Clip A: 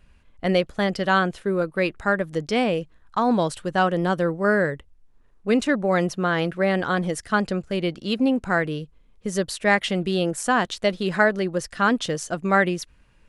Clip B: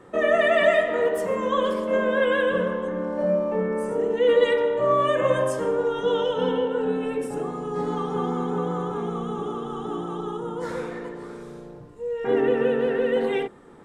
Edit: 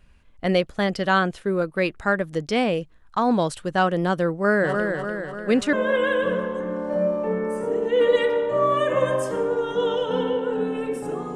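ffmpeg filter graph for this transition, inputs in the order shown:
ffmpeg -i cue0.wav -i cue1.wav -filter_complex "[0:a]asplit=3[link_01][link_02][link_03];[link_01]afade=type=out:start_time=4.62:duration=0.02[link_04];[link_02]aecho=1:1:296|592|888|1184|1480|1776|2072:0.562|0.315|0.176|0.0988|0.0553|0.031|0.0173,afade=type=in:start_time=4.62:duration=0.02,afade=type=out:start_time=5.73:duration=0.02[link_05];[link_03]afade=type=in:start_time=5.73:duration=0.02[link_06];[link_04][link_05][link_06]amix=inputs=3:normalize=0,apad=whole_dur=11.35,atrim=end=11.35,atrim=end=5.732[link_07];[1:a]atrim=start=2.008:end=7.63[link_08];[link_07][link_08]acrossfade=duration=0.004:curve1=hsin:curve2=hsin" out.wav

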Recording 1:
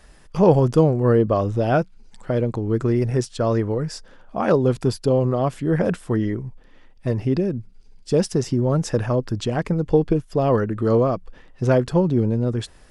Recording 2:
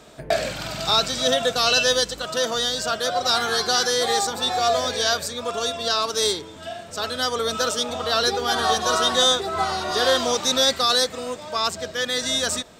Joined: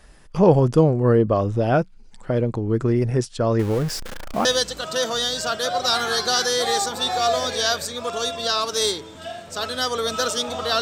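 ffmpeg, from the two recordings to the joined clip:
ffmpeg -i cue0.wav -i cue1.wav -filter_complex "[0:a]asettb=1/sr,asplit=3[link_01][link_02][link_03];[link_01]atrim=end=3.594[link_04];[link_02]atrim=start=3.59:end=4.45,asetpts=PTS-STARTPTS,afade=type=in:duration=0.004:curve=qsin,afade=type=out:start_time=0.856:duration=0.004:curve=qsin,aeval=exprs='val(0)+0.5*0.0422*sgn(val(0))':channel_layout=same[link_05];[link_03]atrim=start=4.446[link_06];[link_04][link_05]acrossfade=duration=0.004:curve1=hsin:curve2=qsin[link_07];[link_07][link_06]acrossfade=duration=0.004:curve1=qsin:curve2=hsin,apad=whole_dur=10.81,atrim=end=10.81,atrim=end=4.452[link_08];[1:a]atrim=start=1.858:end=8.22[link_09];[link_08][link_09]acrossfade=duration=0.004:curve1=hsin:curve2=hsin" out.wav

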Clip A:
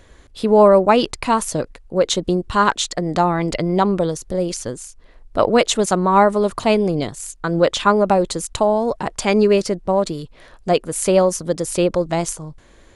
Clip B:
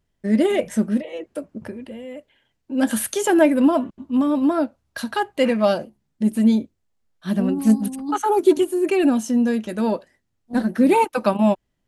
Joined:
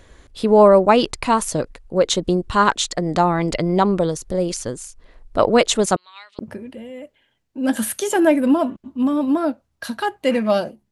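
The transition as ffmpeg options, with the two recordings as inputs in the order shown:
ffmpeg -i cue0.wav -i cue1.wav -filter_complex "[0:a]asettb=1/sr,asplit=3[link_01][link_02][link_03];[link_01]atrim=end=5.964[link_04];[link_02]atrim=start=5.96:end=6.39,asetpts=PTS-STARTPTS,afade=type=in:duration=0.004:curve=qsin,afade=type=out:start_time=0.426:duration=0.004:curve=qsin,asuperpass=centerf=3400:order=4:qfactor=2[link_05];[link_03]atrim=start=6.386[link_06];[link_04][link_05]acrossfade=duration=0.004:curve1=hsin:curve2=qsin[link_07];[link_07][link_06]acrossfade=duration=0.004:curve1=qsin:curve2=hsin,apad=whole_dur=10.91,atrim=end=10.91,atrim=end=6.392[link_08];[1:a]atrim=start=1.528:end=6.05[link_09];[link_08][link_09]acrossfade=duration=0.004:curve1=hsin:curve2=hsin" out.wav

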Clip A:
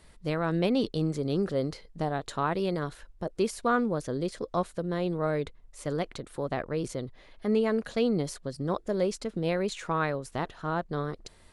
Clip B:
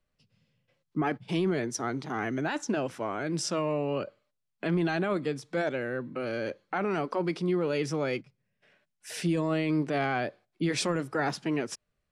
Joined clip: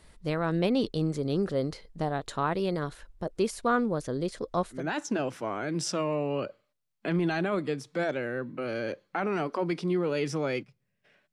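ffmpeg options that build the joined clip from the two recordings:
ffmpeg -i cue0.wav -i cue1.wav -filter_complex "[0:a]apad=whole_dur=11.32,atrim=end=11.32,atrim=end=4.9,asetpts=PTS-STARTPTS[link_01];[1:a]atrim=start=2.28:end=8.9,asetpts=PTS-STARTPTS[link_02];[link_01][link_02]acrossfade=duration=0.2:curve1=tri:curve2=tri" out.wav

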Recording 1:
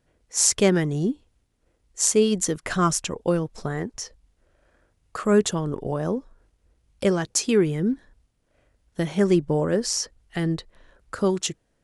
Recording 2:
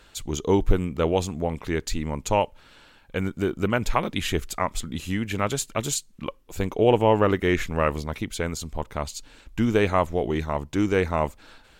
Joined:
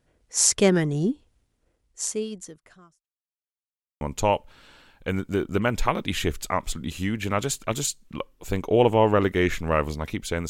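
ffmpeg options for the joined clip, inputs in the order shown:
ffmpeg -i cue0.wav -i cue1.wav -filter_complex "[0:a]apad=whole_dur=10.49,atrim=end=10.49,asplit=2[link_01][link_02];[link_01]atrim=end=3.08,asetpts=PTS-STARTPTS,afade=type=out:start_time=1.49:duration=1.59:curve=qua[link_03];[link_02]atrim=start=3.08:end=4.01,asetpts=PTS-STARTPTS,volume=0[link_04];[1:a]atrim=start=2.09:end=8.57,asetpts=PTS-STARTPTS,afade=type=in:duration=0.004:curve=hsin[link_05];[link_03][link_04][link_05]concat=n=3:v=0:a=1" out.wav

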